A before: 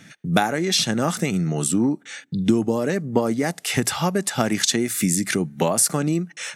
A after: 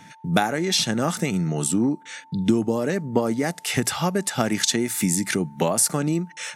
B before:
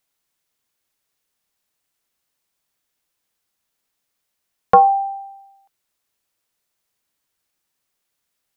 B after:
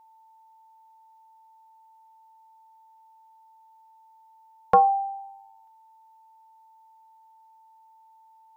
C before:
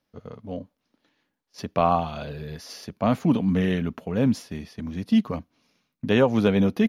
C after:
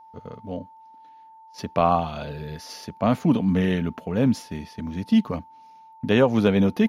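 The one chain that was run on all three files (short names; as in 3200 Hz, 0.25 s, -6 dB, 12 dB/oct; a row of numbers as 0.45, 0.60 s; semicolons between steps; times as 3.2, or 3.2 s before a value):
whine 890 Hz -47 dBFS; match loudness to -23 LUFS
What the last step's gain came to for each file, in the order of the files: -1.5, -6.5, +1.0 dB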